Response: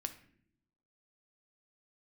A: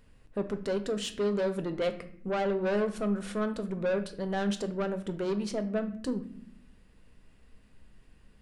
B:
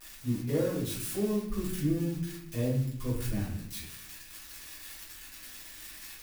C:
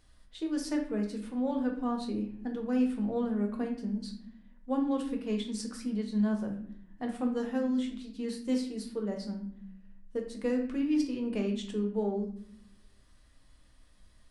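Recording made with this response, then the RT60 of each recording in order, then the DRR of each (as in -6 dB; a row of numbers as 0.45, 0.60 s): A; not exponential, not exponential, not exponential; 7.5, -8.0, 1.0 dB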